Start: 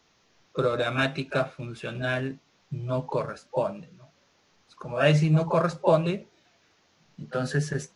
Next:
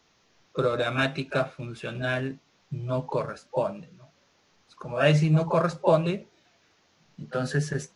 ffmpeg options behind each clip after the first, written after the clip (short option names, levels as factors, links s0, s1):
-af anull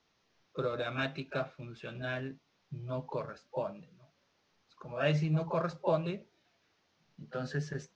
-af "lowpass=f=6100:w=0.5412,lowpass=f=6100:w=1.3066,volume=0.355"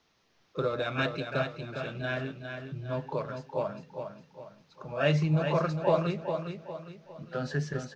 -af "aecho=1:1:407|814|1221|1628|2035:0.447|0.174|0.0679|0.0265|0.0103,volume=1.58"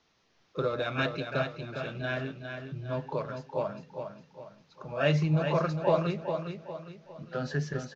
-af "aresample=16000,aresample=44100"